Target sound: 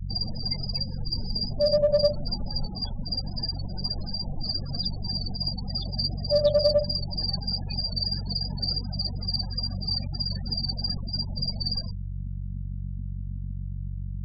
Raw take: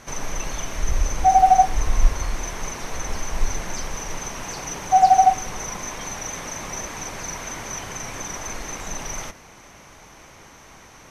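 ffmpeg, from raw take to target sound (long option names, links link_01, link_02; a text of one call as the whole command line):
ffmpeg -i in.wav -filter_complex "[0:a]aeval=exprs='val(0)+0.0224*(sin(2*PI*60*n/s)+sin(2*PI*2*60*n/s)/2+sin(2*PI*3*60*n/s)/3+sin(2*PI*4*60*n/s)/4+sin(2*PI*5*60*n/s)/5)':channel_layout=same,afftfilt=real='re*gte(hypot(re,im),0.0562)':imag='im*gte(hypot(re,im),0.0562)':win_size=1024:overlap=0.75,equalizer=frequency=125:width_type=o:width=1:gain=4,equalizer=frequency=250:width_type=o:width=1:gain=5,equalizer=frequency=500:width_type=o:width=1:gain=-8,equalizer=frequency=1000:width_type=o:width=1:gain=-4,equalizer=frequency=2000:width_type=o:width=1:gain=-10,equalizer=frequency=4000:width_type=o:width=1:gain=5,equalizer=frequency=8000:width_type=o:width=1:gain=9,acrossover=split=140|3000[link_01][link_02][link_03];[link_01]acompressor=threshold=-31dB:ratio=4[link_04];[link_04][link_02][link_03]amix=inputs=3:normalize=0,equalizer=frequency=68:width=0.35:gain=2.5,asetrate=34398,aresample=44100,asplit=2[link_05][link_06];[link_06]aeval=exprs='clip(val(0),-1,0.106)':channel_layout=same,volume=-12dB[link_07];[link_05][link_07]amix=inputs=2:normalize=0,volume=-3.5dB" out.wav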